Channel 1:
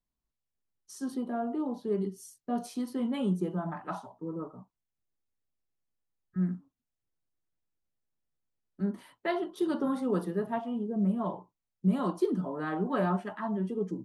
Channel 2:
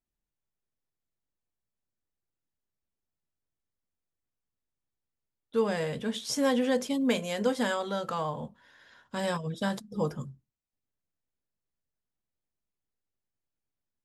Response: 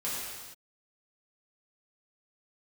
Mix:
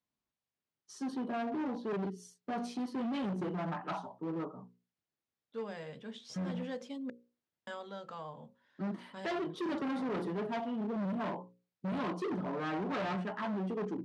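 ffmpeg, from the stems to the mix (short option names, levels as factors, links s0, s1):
-filter_complex "[0:a]volume=1.26,asplit=2[s0][s1];[1:a]volume=0.237,asplit=3[s2][s3][s4];[s2]atrim=end=7.1,asetpts=PTS-STARTPTS,afade=t=out:st=7.096:d=0.004:c=hsin[s5];[s3]atrim=start=7.1:end=7.67,asetpts=PTS-STARTPTS,volume=0[s6];[s4]atrim=start=7.67,asetpts=PTS-STARTPTS,afade=t=in:d=0.004:c=hsin[s7];[s5][s6][s7]concat=n=3:v=0:a=1[s8];[s1]apad=whole_len=619602[s9];[s8][s9]sidechaincompress=threshold=0.0282:ratio=4:attack=16:release=103[s10];[s0][s10]amix=inputs=2:normalize=0,bandreject=f=60:t=h:w=6,bandreject=f=120:t=h:w=6,bandreject=f=180:t=h:w=6,bandreject=f=240:t=h:w=6,bandreject=f=300:t=h:w=6,bandreject=f=360:t=h:w=6,bandreject=f=420:t=h:w=6,bandreject=f=480:t=h:w=6,bandreject=f=540:t=h:w=6,asoftclip=type=hard:threshold=0.0224,highpass=120,lowpass=5000"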